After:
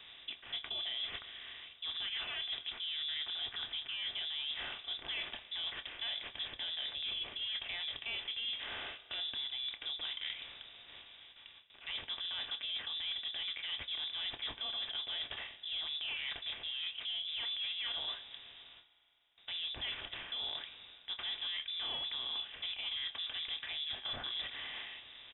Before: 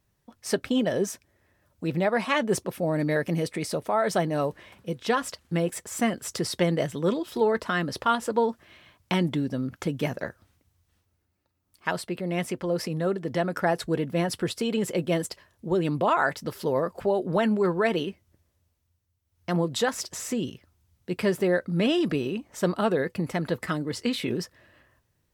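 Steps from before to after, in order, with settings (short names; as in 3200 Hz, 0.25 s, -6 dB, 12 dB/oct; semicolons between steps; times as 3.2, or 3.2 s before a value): per-bin compression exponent 0.6; doubler 27 ms -13.5 dB; in parallel at +2 dB: limiter -14.5 dBFS, peak gain reduction 9.5 dB; on the sum: resonator 150 Hz, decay 0.36 s, harmonics all, mix 40%; gate with hold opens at -39 dBFS; reverse; compressor 6:1, threshold -29 dBFS, peak gain reduction 14 dB; reverse; soft clip -25 dBFS, distortion -17 dB; inverted band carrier 3700 Hz; spring tank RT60 3.1 s, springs 33 ms, chirp 25 ms, DRR 16.5 dB; gain -7 dB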